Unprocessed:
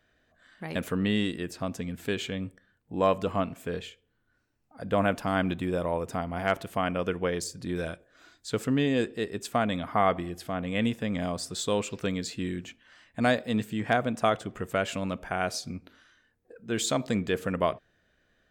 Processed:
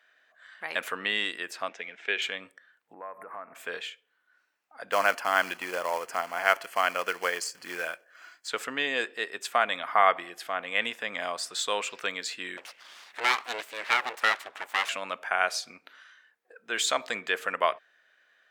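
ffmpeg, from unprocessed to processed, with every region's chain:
ffmpeg -i in.wav -filter_complex "[0:a]asettb=1/sr,asplit=3[link_01][link_02][link_03];[link_01]atrim=end=1.694[link_04];[link_02]atrim=start=1.69:end=2.22,asetpts=PTS-STARTPTS,afade=type=in:duration=0.004:curve=qsin,afade=type=out:start_time=0.526:duration=0.004:curve=qsin,aeval=exprs='sgn(val(0))*max(abs(val(0))-0.00112,0)':channel_layout=same,highpass=frequency=160:width=0.5412,highpass=frequency=160:width=1.3066,equalizer=frequency=160:width_type=q:width=4:gain=-5,equalizer=frequency=260:width_type=q:width=4:gain=-7,equalizer=frequency=400:width_type=q:width=4:gain=3,equalizer=frequency=1100:width_type=q:width=4:gain=-9,equalizer=frequency=2200:width_type=q:width=4:gain=5,equalizer=frequency=4500:width_type=q:width=4:gain=-10,lowpass=frequency=5300:width=0.5412,lowpass=frequency=5300:width=1.3066[link_05];[link_03]atrim=start=2.216[link_06];[link_04][link_05]acrossfade=duration=0.004:curve1=hsin:curve2=qsin[link_07];[link_07][link_06]acrossfade=duration=0.004:curve1=qsin:curve2=hsin,asettb=1/sr,asplit=3[link_08][link_09][link_10];[link_08]atrim=end=2.934[link_11];[link_09]atrim=start=2.93:end=3.55,asetpts=PTS-STARTPTS,afade=type=in:duration=0.004:curve=qsin,afade=type=out:start_time=0.616:duration=0.004:curve=qsin,asuperstop=centerf=4600:order=12:qfactor=0.63,acompressor=threshold=-35dB:ratio=16:attack=3.2:release=140:knee=1:detection=peak[link_12];[link_10]atrim=start=3.546[link_13];[link_11][link_12]acrossfade=duration=0.004:curve1=hsin:curve2=qsin[link_14];[link_14][link_13]acrossfade=duration=0.004:curve1=qsin:curve2=hsin,asettb=1/sr,asplit=3[link_15][link_16][link_17];[link_15]atrim=end=4.924[link_18];[link_16]atrim=start=4.92:end=8.48,asetpts=PTS-STARTPTS,afade=type=in:duration=0.004:curve=qsin,afade=type=out:start_time=3.556:duration=0.004:curve=qsin,acrusher=bits=4:mode=log:mix=0:aa=0.000001,asuperstop=centerf=3700:order=4:qfactor=6.2[link_19];[link_17]atrim=start=8.476[link_20];[link_18][link_19]acrossfade=duration=0.004:curve1=hsin:curve2=qsin[link_21];[link_21][link_20]acrossfade=duration=0.004:curve1=qsin:curve2=hsin,asettb=1/sr,asplit=3[link_22][link_23][link_24];[link_22]atrim=end=12.574[link_25];[link_23]atrim=start=12.57:end=14.89,asetpts=PTS-STARTPTS,afade=type=in:duration=0.004:curve=qsin,afade=type=out:start_time=2.316:duration=0.004:curve=qsin,acompressor=mode=upward:threshold=-39dB:ratio=2.5:attack=3.2:release=140:knee=2.83:detection=peak,aeval=exprs='abs(val(0))':channel_layout=same,aeval=exprs='val(0)+0.000794*(sin(2*PI*50*n/s)+sin(2*PI*2*50*n/s)/2+sin(2*PI*3*50*n/s)/3+sin(2*PI*4*50*n/s)/4+sin(2*PI*5*50*n/s)/5)':channel_layout=same[link_26];[link_24]atrim=start=14.886[link_27];[link_25][link_26]acrossfade=duration=0.004:curve1=hsin:curve2=qsin[link_28];[link_28][link_27]acrossfade=duration=0.004:curve1=qsin:curve2=hsin,highpass=660,equalizer=frequency=1800:width=0.58:gain=8" out.wav

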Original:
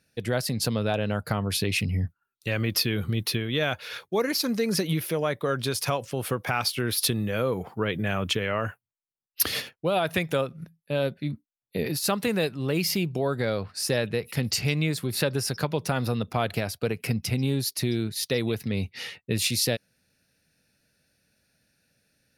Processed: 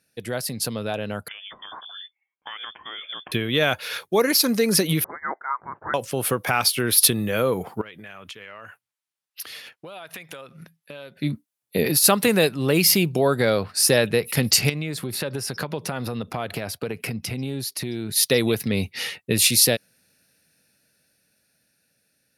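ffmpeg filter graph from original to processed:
ffmpeg -i in.wav -filter_complex "[0:a]asettb=1/sr,asplit=3[link_01][link_02][link_03];[link_01]atrim=end=1.284[link_04];[link_02]atrim=start=1.28:end=3.32,asetpts=PTS-STARTPTS,afade=type=in:duration=0.004:curve=qsin,afade=type=out:start_time=2.036:duration=0.004:curve=qsin,highpass=frequency=720:poles=1,acompressor=threshold=-33dB:ratio=12:attack=3.2:release=140:knee=1:detection=peak,lowpass=frequency=3100:width_type=q:width=0.5098,lowpass=frequency=3100:width_type=q:width=0.6013,lowpass=frequency=3100:width_type=q:width=0.9,lowpass=frequency=3100:width_type=q:width=2.563,afreqshift=-3600[link_05];[link_03]atrim=start=3.316[link_06];[link_04][link_05]acrossfade=duration=0.004:curve1=hsin:curve2=qsin[link_07];[link_07][link_06]acrossfade=duration=0.004:curve1=qsin:curve2=hsin,asettb=1/sr,asplit=3[link_08][link_09][link_10];[link_08]atrim=end=5.044[link_11];[link_09]atrim=start=5.04:end=5.94,asetpts=PTS-STARTPTS,afade=type=in:duration=0.004:curve=qsin,afade=type=out:start_time=0.896:duration=0.004:curve=qsin,highpass=frequency=950:width=0.5412,highpass=frequency=950:width=1.3066,tiltshelf=frequency=1400:gain=-6.5,lowpass=frequency=2200:width_type=q:width=0.5098,lowpass=frequency=2200:width_type=q:width=0.6013,lowpass=frequency=2200:width_type=q:width=0.9,lowpass=frequency=2200:width_type=q:width=2.563,afreqshift=-2600[link_12];[link_10]atrim=start=5.936[link_13];[link_11][link_12]acrossfade=duration=0.004:curve1=hsin:curve2=qsin[link_14];[link_14][link_13]acrossfade=duration=0.004:curve1=qsin:curve2=hsin,asettb=1/sr,asplit=3[link_15][link_16][link_17];[link_15]atrim=end=7.814[link_18];[link_16]atrim=start=7.81:end=11.17,asetpts=PTS-STARTPTS,afade=type=in:duration=0.004:curve=qsin,afade=type=out:start_time=3.356:duration=0.004:curve=qsin,lowpass=frequency=2700:poles=1,tiltshelf=frequency=840:gain=-7,acompressor=threshold=-42dB:ratio=8:attack=3.2:release=140:knee=1:detection=peak[link_19];[link_17]atrim=start=11.166[link_20];[link_18][link_19]acrossfade=duration=0.004:curve1=hsin:curve2=qsin[link_21];[link_21][link_20]acrossfade=duration=0.004:curve1=qsin:curve2=hsin,asettb=1/sr,asplit=3[link_22][link_23][link_24];[link_22]atrim=end=14.694[link_25];[link_23]atrim=start=14.69:end=18.09,asetpts=PTS-STARTPTS,afade=type=in:duration=0.004:curve=qsin,afade=type=out:start_time=3.396:duration=0.004:curve=qsin,acompressor=threshold=-31dB:ratio=4:attack=3.2:release=140:knee=1:detection=peak,highshelf=frequency=5500:gain=-9.5[link_26];[link_24]atrim=start=18.086[link_27];[link_25][link_26]acrossfade=duration=0.004:curve1=hsin:curve2=qsin[link_28];[link_28][link_27]acrossfade=duration=0.004:curve1=qsin:curve2=hsin,highpass=frequency=160:poles=1,equalizer=frequency=11000:width_type=o:width=0.79:gain=7,dynaudnorm=framelen=610:gausssize=9:maxgain=11.5dB,volume=-1dB" out.wav

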